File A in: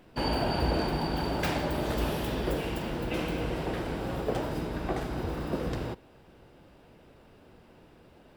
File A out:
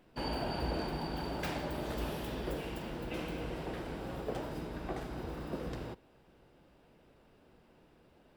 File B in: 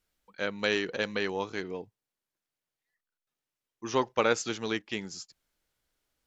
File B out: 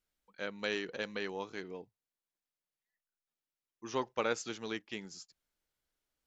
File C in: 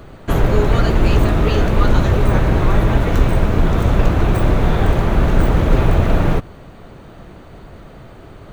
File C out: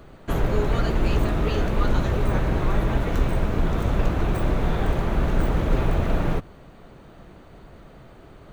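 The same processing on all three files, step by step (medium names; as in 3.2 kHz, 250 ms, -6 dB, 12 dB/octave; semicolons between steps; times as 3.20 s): peaking EQ 98 Hz -7 dB 0.27 oct; trim -7.5 dB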